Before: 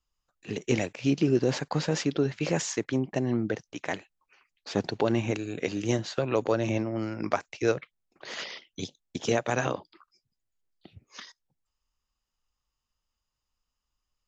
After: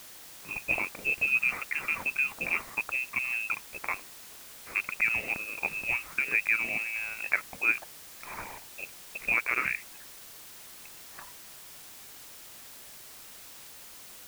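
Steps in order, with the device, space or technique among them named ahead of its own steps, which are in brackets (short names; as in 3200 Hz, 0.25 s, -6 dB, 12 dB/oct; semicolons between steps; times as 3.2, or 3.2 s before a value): scrambled radio voice (BPF 330–2900 Hz; inverted band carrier 2900 Hz; white noise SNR 14 dB)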